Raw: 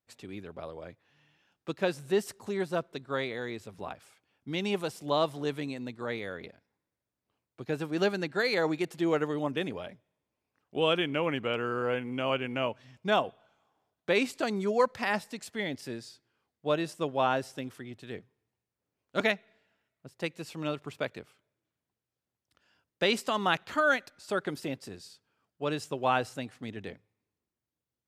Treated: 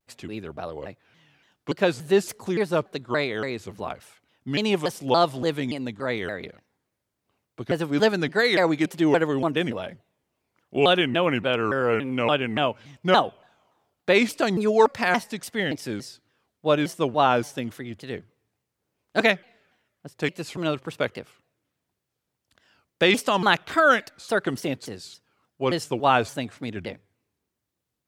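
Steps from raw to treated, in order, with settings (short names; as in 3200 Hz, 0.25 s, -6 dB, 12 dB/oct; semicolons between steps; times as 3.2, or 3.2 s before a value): shaped vibrato saw down 3.5 Hz, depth 250 cents; gain +7.5 dB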